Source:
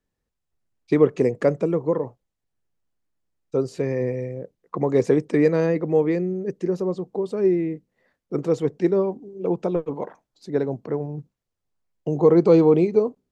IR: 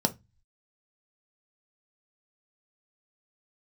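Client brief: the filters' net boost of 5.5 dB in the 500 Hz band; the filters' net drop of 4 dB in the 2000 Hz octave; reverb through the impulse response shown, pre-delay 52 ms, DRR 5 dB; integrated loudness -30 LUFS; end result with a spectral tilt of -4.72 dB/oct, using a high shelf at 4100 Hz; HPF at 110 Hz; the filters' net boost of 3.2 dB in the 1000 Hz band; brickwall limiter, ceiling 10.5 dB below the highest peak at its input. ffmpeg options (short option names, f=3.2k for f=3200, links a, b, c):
-filter_complex "[0:a]highpass=110,equalizer=f=500:t=o:g=6,equalizer=f=1k:t=o:g=3,equalizer=f=2k:t=o:g=-7.5,highshelf=f=4.1k:g=7.5,alimiter=limit=-9.5dB:level=0:latency=1,asplit=2[a][b];[1:a]atrim=start_sample=2205,adelay=52[c];[b][c]afir=irnorm=-1:irlink=0,volume=-14dB[d];[a][d]amix=inputs=2:normalize=0,volume=-11.5dB"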